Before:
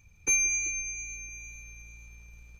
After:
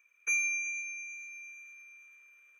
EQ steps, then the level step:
high-pass filter 670 Hz 24 dB per octave
high-shelf EQ 3,500 Hz −10 dB
phaser with its sweep stopped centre 1,900 Hz, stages 4
+3.5 dB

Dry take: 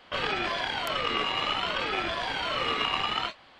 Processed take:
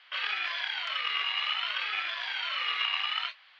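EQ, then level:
flat-topped band-pass 3,500 Hz, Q 0.66
high-frequency loss of the air 180 metres
+3.5 dB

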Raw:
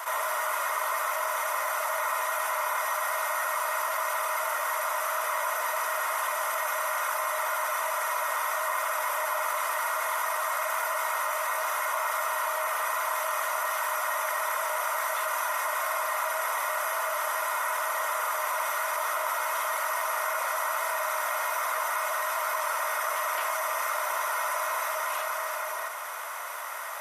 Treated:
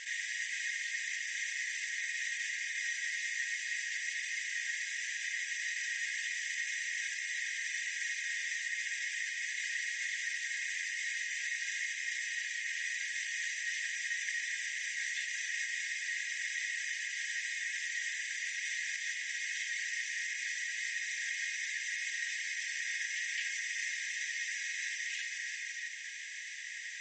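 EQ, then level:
linear-phase brick-wall high-pass 1,600 Hz
Butterworth low-pass 7,700 Hz 96 dB per octave
0.0 dB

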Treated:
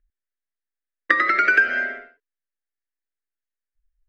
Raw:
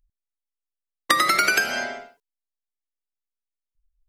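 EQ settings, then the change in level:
low-pass with resonance 1,700 Hz, resonance Q 3.8
phaser with its sweep stopped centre 370 Hz, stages 4
0.0 dB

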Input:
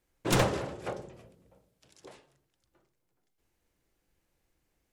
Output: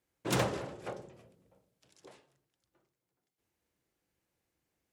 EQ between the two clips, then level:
high-pass filter 80 Hz 12 dB per octave
−4.5 dB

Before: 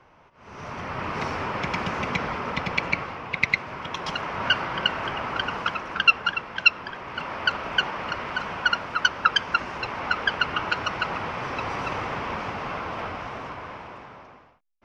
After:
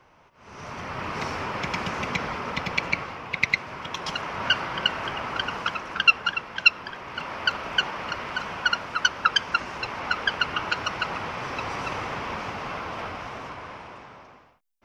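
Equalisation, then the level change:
high-shelf EQ 4,800 Hz +9 dB
−2.0 dB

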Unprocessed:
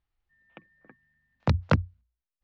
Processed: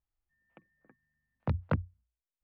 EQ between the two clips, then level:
low-pass filter 2,300 Hz 6 dB per octave
high-frequency loss of the air 230 metres
−7.0 dB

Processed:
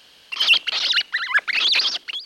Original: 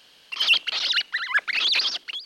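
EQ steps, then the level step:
parametric band 72 Hz +10.5 dB 0.22 octaves
+3.5 dB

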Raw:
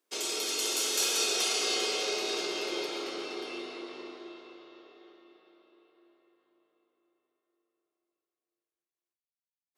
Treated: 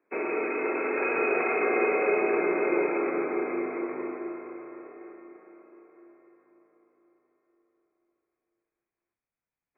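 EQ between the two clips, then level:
linear-phase brick-wall low-pass 2,600 Hz
low-shelf EQ 330 Hz +5 dB
+8.5 dB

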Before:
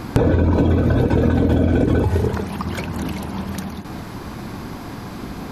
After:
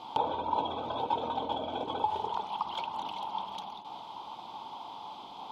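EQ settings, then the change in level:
pair of resonant band-passes 1,700 Hz, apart 1.9 octaves
dynamic equaliser 1,300 Hz, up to +8 dB, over −50 dBFS, Q 0.94
0.0 dB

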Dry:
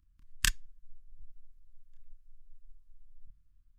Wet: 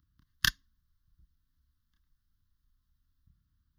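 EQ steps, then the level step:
high-pass filter 91 Hz 12 dB per octave
phaser with its sweep stopped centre 2,400 Hz, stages 6
+5.5 dB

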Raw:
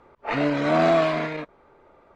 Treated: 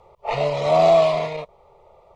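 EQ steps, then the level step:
parametric band 290 Hz −7 dB 0.44 octaves
phaser with its sweep stopped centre 650 Hz, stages 4
+6.0 dB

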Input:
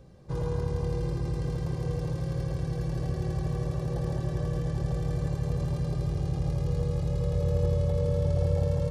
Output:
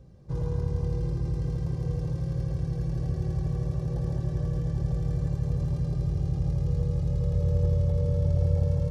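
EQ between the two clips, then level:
parametric band 74 Hz +4.5 dB 2.7 octaves
low-shelf EQ 470 Hz +5.5 dB
parametric band 5,700 Hz +3.5 dB 0.45 octaves
−7.0 dB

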